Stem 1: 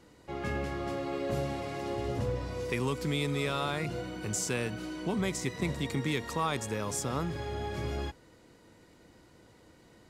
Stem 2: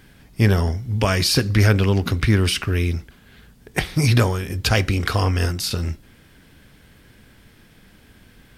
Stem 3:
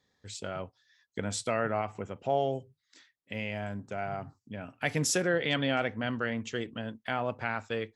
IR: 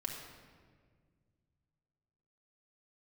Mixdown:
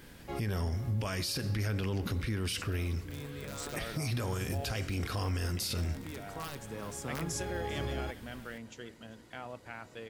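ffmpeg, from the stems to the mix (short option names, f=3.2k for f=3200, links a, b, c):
-filter_complex "[0:a]aeval=exprs='(mod(11.2*val(0)+1,2)-1)/11.2':c=same,adynamicequalizer=threshold=0.00447:dfrequency=1900:dqfactor=0.7:tfrequency=1900:tqfactor=0.7:attack=5:release=100:ratio=0.375:range=3:mode=cutabove:tftype=highshelf,volume=-1dB,asplit=3[a][b][c];[b]volume=-21dB[d];[c]volume=-23dB[e];[1:a]volume=-4.5dB,asplit=3[f][g][h];[g]volume=-20.5dB[i];[2:a]adelay=2250,volume=-12.5dB,asplit=2[j][k];[k]volume=-19.5dB[l];[h]apad=whole_len=445334[m];[a][m]sidechaincompress=threshold=-43dB:ratio=4:attack=16:release=1390[n];[n][f]amix=inputs=2:normalize=0,highshelf=f=8k:g=-4.5,alimiter=limit=-20dB:level=0:latency=1:release=371,volume=0dB[o];[3:a]atrim=start_sample=2205[p];[d][i]amix=inputs=2:normalize=0[q];[q][p]afir=irnorm=-1:irlink=0[r];[e][l]amix=inputs=2:normalize=0,aecho=0:1:388:1[s];[j][o][r][s]amix=inputs=4:normalize=0,crystalizer=i=1:c=0,alimiter=level_in=2dB:limit=-24dB:level=0:latency=1:release=33,volume=-2dB"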